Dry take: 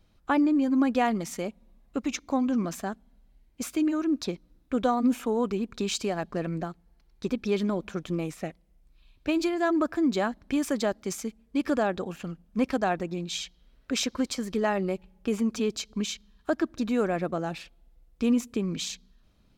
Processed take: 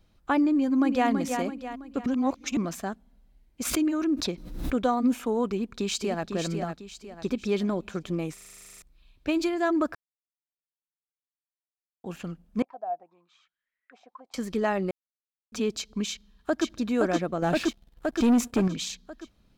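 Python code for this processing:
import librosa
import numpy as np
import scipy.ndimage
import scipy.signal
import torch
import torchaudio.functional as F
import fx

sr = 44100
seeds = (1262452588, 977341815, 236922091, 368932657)

y = fx.echo_throw(x, sr, start_s=0.51, length_s=0.58, ms=330, feedback_pct=45, wet_db=-6.0)
y = fx.pre_swell(y, sr, db_per_s=60.0, at=(3.65, 4.76))
y = fx.echo_throw(y, sr, start_s=5.52, length_s=0.72, ms=500, feedback_pct=40, wet_db=-6.5)
y = fx.auto_wah(y, sr, base_hz=700.0, top_hz=2100.0, q=12.0, full_db=-24.0, direction='down', at=(12.62, 14.34))
y = fx.echo_throw(y, sr, start_s=16.09, length_s=0.58, ms=520, feedback_pct=65, wet_db=-1.5)
y = fx.leveller(y, sr, passes=2, at=(17.42, 18.68))
y = fx.edit(y, sr, fx.reverse_span(start_s=2.06, length_s=0.51),
    fx.stutter_over(start_s=8.34, slice_s=0.04, count=12),
    fx.silence(start_s=9.95, length_s=2.09),
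    fx.silence(start_s=14.91, length_s=0.61), tone=tone)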